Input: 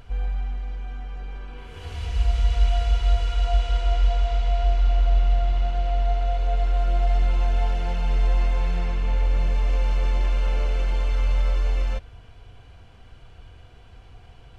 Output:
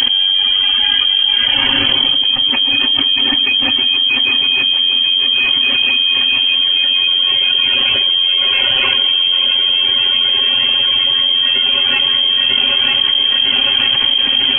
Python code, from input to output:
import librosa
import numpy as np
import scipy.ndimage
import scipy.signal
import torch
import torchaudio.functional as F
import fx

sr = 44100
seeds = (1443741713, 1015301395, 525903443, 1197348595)

y = fx.dereverb_blind(x, sr, rt60_s=1.5)
y = y + 0.54 * np.pad(y, (int(7.5 * sr / 1000.0), 0))[:len(y)]
y = fx.echo_feedback(y, sr, ms=948, feedback_pct=51, wet_db=-10)
y = fx.freq_invert(y, sr, carrier_hz=3200)
y = fx.env_flatten(y, sr, amount_pct=100)
y = F.gain(torch.from_numpy(y), 2.0).numpy()